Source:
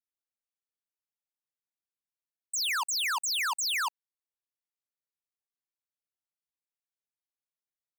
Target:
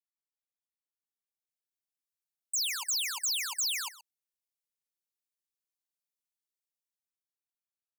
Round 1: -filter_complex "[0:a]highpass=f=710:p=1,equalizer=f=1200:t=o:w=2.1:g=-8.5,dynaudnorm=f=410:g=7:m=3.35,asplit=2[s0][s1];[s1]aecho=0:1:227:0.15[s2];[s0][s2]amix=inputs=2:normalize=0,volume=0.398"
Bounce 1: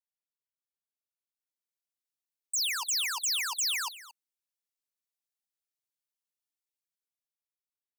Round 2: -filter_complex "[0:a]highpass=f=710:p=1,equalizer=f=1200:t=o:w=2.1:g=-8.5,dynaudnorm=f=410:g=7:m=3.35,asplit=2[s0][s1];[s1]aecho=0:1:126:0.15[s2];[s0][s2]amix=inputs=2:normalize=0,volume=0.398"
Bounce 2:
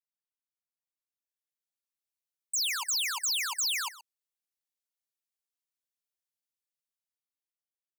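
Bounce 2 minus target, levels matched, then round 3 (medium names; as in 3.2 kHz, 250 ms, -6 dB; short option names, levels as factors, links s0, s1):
1 kHz band +4.5 dB
-filter_complex "[0:a]highpass=f=710:p=1,equalizer=f=1200:t=o:w=2.1:g=-15,dynaudnorm=f=410:g=7:m=3.35,asplit=2[s0][s1];[s1]aecho=0:1:126:0.15[s2];[s0][s2]amix=inputs=2:normalize=0,volume=0.398"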